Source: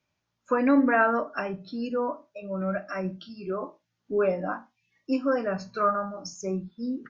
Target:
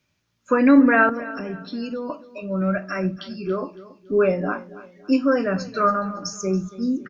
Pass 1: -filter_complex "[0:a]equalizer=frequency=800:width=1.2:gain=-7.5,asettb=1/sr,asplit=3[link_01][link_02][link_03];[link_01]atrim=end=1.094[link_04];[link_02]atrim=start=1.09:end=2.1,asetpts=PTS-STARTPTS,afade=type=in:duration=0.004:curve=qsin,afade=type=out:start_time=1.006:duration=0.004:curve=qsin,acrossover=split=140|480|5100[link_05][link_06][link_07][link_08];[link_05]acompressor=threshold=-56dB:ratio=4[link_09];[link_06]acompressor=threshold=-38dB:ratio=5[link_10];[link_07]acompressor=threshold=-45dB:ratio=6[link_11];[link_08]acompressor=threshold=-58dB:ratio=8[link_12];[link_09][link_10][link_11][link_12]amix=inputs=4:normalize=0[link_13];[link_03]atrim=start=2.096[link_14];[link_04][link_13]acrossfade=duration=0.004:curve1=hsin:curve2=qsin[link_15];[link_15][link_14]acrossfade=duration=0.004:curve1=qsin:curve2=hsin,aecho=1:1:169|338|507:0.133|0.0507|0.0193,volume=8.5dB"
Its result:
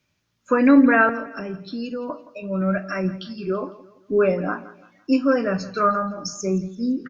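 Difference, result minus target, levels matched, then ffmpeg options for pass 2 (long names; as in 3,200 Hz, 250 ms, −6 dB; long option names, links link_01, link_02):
echo 111 ms early
-filter_complex "[0:a]equalizer=frequency=800:width=1.2:gain=-7.5,asettb=1/sr,asplit=3[link_01][link_02][link_03];[link_01]atrim=end=1.094[link_04];[link_02]atrim=start=1.09:end=2.1,asetpts=PTS-STARTPTS,afade=type=in:duration=0.004:curve=qsin,afade=type=out:start_time=1.006:duration=0.004:curve=qsin,acrossover=split=140|480|5100[link_05][link_06][link_07][link_08];[link_05]acompressor=threshold=-56dB:ratio=4[link_09];[link_06]acompressor=threshold=-38dB:ratio=5[link_10];[link_07]acompressor=threshold=-45dB:ratio=6[link_11];[link_08]acompressor=threshold=-58dB:ratio=8[link_12];[link_09][link_10][link_11][link_12]amix=inputs=4:normalize=0[link_13];[link_03]atrim=start=2.096[link_14];[link_04][link_13]acrossfade=duration=0.004:curve1=hsin:curve2=qsin[link_15];[link_15][link_14]acrossfade=duration=0.004:curve1=qsin:curve2=hsin,aecho=1:1:280|560|840:0.133|0.0507|0.0193,volume=8.5dB"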